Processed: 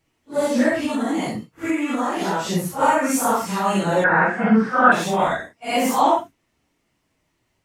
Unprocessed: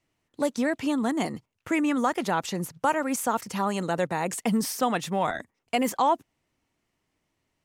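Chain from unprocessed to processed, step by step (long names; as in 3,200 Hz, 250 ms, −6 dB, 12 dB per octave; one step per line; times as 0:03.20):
random phases in long frames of 200 ms
0:00.83–0:02.53: downward compressor, threshold −26 dBFS, peak gain reduction 8 dB
0:04.04–0:04.92: low-pass with resonance 1,500 Hz, resonance Q 13
level +7 dB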